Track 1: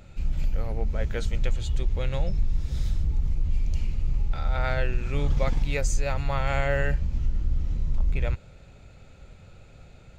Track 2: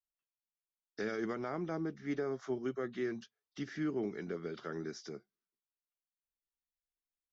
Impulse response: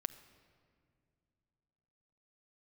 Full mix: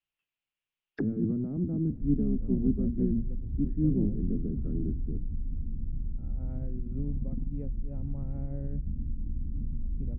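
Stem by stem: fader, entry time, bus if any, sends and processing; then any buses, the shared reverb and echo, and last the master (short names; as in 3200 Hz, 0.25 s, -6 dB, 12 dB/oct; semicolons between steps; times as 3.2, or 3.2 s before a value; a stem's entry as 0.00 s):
+2.0 dB, 1.85 s, no send, compressor 5:1, threshold -32 dBFS, peak gain reduction 13.5 dB
-1.0 dB, 0.00 s, send -5.5 dB, octaver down 1 oct, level +2 dB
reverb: on, pre-delay 6 ms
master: envelope low-pass 250–2800 Hz down, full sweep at -35 dBFS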